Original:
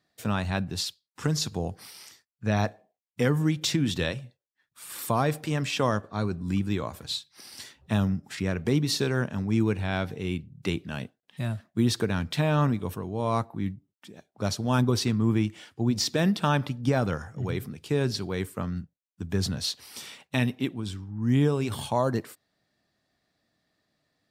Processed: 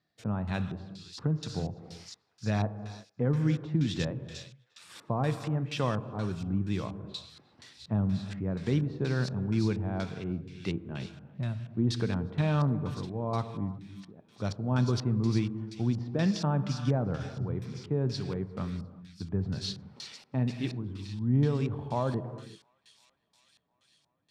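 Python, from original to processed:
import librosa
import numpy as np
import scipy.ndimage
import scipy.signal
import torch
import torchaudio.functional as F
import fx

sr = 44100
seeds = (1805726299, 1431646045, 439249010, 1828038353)

p1 = fx.peak_eq(x, sr, hz=140.0, db=5.5, octaves=0.93)
p2 = p1 + fx.echo_wet_highpass(p1, sr, ms=353, feedback_pct=73, hz=4600.0, wet_db=-5.0, dry=0)
p3 = fx.rev_gated(p2, sr, seeds[0], gate_ms=390, shape='flat', drr_db=10.0)
p4 = fx.filter_lfo_lowpass(p3, sr, shape='square', hz=2.1, low_hz=910.0, high_hz=5400.0, q=0.81)
y = p4 * librosa.db_to_amplitude(-6.0)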